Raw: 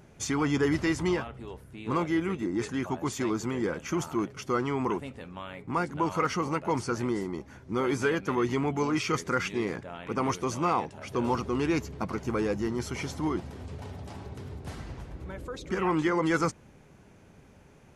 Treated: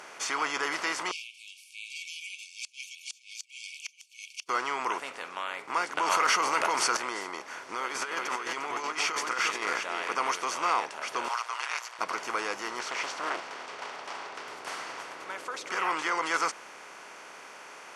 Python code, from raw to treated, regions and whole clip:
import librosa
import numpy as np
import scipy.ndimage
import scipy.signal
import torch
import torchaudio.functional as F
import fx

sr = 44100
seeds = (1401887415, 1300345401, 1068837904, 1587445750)

y = fx.chain(x, sr, fx.brickwall_highpass(low_hz=2200.0),
    fx.gate_flip(shuts_db=-30.0, range_db=-37), at=(1.11, 4.49))
y = fx.chain(y, sr, fx.high_shelf(hz=9300.0, db=7.0),
    fx.env_flatten(amount_pct=100), at=(5.97, 6.97))
y = fx.chain(y, sr, fx.echo_single(ms=351, db=-11.0),
    fx.over_compress(threshold_db=-30.0, ratio=-0.5), at=(7.57, 10.17))
y = fx.chain(y, sr, fx.cheby2_highpass(hz=300.0, order=4, stop_db=50),
    fx.ring_mod(carrier_hz=59.0), at=(11.28, 11.99))
y = fx.chain(y, sr, fx.lowpass(hz=5300.0, slope=12),
    fx.low_shelf(hz=220.0, db=-7.5),
    fx.doppler_dist(depth_ms=0.65), at=(12.8, 14.48))
y = fx.bin_compress(y, sr, power=0.6)
y = scipy.signal.sosfilt(scipy.signal.butter(2, 870.0, 'highpass', fs=sr, output='sos'), y)
y = fx.high_shelf(y, sr, hz=7300.0, db=-8.5)